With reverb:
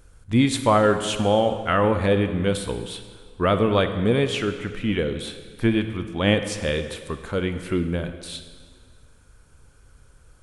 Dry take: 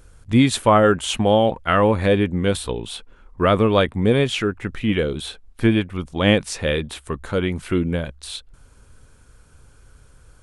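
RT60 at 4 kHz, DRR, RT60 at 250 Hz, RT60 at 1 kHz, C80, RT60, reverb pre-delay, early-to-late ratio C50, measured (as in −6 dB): 1.5 s, 9.0 dB, 1.9 s, 1.8 s, 10.5 dB, 1.8 s, 37 ms, 9.5 dB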